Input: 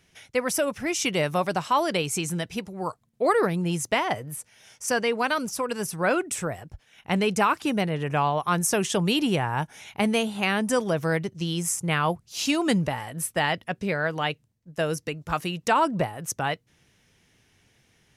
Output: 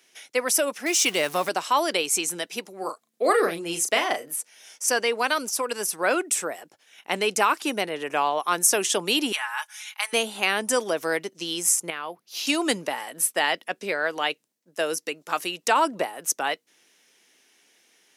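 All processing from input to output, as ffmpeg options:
ffmpeg -i in.wav -filter_complex "[0:a]asettb=1/sr,asplit=3[link_01][link_02][link_03];[link_01]atrim=end=0.864[link_04];[link_02]atrim=start=0.86:end=1.49,asetpts=PTS-STARTPTS,afade=type=in:duration=0.004:curve=qsin,afade=type=out:start_time=0.626:duration=0.004:curve=qsin,aeval=exprs='val(0)+0.5*0.0178*sgn(val(0))':channel_layout=same,asubboost=boost=10.5:cutoff=220[link_05];[link_03]atrim=start=1.486[link_06];[link_04][link_05]acrossfade=duration=0.004:curve1=hsin:curve2=qsin[link_07];[link_07][link_06]acrossfade=duration=0.004:curve1=qsin:curve2=hsin,asettb=1/sr,asplit=3[link_08][link_09][link_10];[link_08]atrim=end=2.784[link_11];[link_09]atrim=start=2.78:end=4.31,asetpts=PTS-STARTPTS,afade=type=in:duration=0.004:curve=qsin,afade=type=out:start_time=1.526:duration=0.004:curve=qsin,bandreject=frequency=930:width=6.8,asplit=2[link_12][link_13];[link_13]adelay=36,volume=-7dB[link_14];[link_12][link_14]amix=inputs=2:normalize=0,atrim=end_sample=67473[link_15];[link_10]atrim=start=4.306[link_16];[link_11][link_15]acrossfade=duration=0.004:curve1=hsin:curve2=qsin[link_17];[link_17][link_16]acrossfade=duration=0.004:curve1=qsin:curve2=hsin,asettb=1/sr,asplit=3[link_18][link_19][link_20];[link_18]atrim=end=9.324[link_21];[link_19]atrim=start=9.32:end=10.13,asetpts=PTS-STARTPTS,afade=type=in:duration=0.004:curve=qsin,afade=type=out:start_time=0.806:duration=0.004:curve=qsin,highpass=frequency=1100:width=0.5412,highpass=frequency=1100:width=1.3066,aecho=1:1:4.7:0.7,atrim=end_sample=35721[link_22];[link_20]atrim=start=10.126[link_23];[link_21][link_22]acrossfade=duration=0.004:curve1=hsin:curve2=qsin[link_24];[link_24][link_23]acrossfade=duration=0.004:curve1=qsin:curve2=hsin,asettb=1/sr,asplit=3[link_25][link_26][link_27];[link_25]atrim=end=11.904[link_28];[link_26]atrim=start=11.9:end=12.47,asetpts=PTS-STARTPTS,afade=type=in:duration=0.004:curve=qsin,afade=type=out:start_time=0.566:duration=0.004:curve=qsin,equalizer=frequency=7800:width_type=o:width=0.72:gain=-13,acompressor=threshold=-32dB:ratio=3:attack=3.2:release=140:knee=1:detection=peak[link_29];[link_27]atrim=start=12.466[link_30];[link_28][link_29]acrossfade=duration=0.004:curve1=hsin:curve2=qsin[link_31];[link_31][link_30]acrossfade=duration=0.004:curve1=qsin:curve2=hsin,highpass=frequency=280:width=0.5412,highpass=frequency=280:width=1.3066,highshelf=frequency=3100:gain=7.5" out.wav

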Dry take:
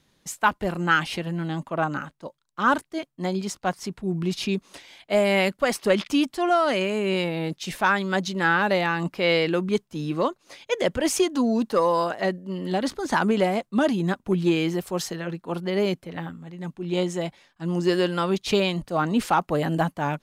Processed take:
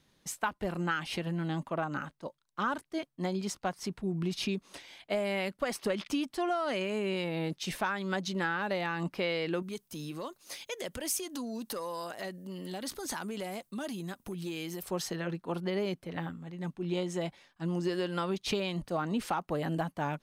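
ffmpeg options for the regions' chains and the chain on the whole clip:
ffmpeg -i in.wav -filter_complex "[0:a]asettb=1/sr,asplit=3[link_01][link_02][link_03];[link_01]atrim=end=9.624[link_04];[link_02]atrim=start=9.62:end=14.83,asetpts=PTS-STARTPTS,afade=type=in:duration=0.004:curve=qsin,afade=type=out:start_time=5.206:duration=0.004:curve=qsin,acompressor=threshold=-35dB:ratio=3:attack=3.2:release=140:knee=1:detection=peak,aemphasis=mode=production:type=75fm[link_05];[link_03]atrim=start=14.826[link_06];[link_04][link_05]acrossfade=duration=0.004:curve1=hsin:curve2=qsin[link_07];[link_07][link_06]acrossfade=duration=0.004:curve1=qsin:curve2=hsin,acompressor=threshold=-25dB:ratio=6,bandreject=frequency=7100:width=17,volume=-3.5dB" out.wav

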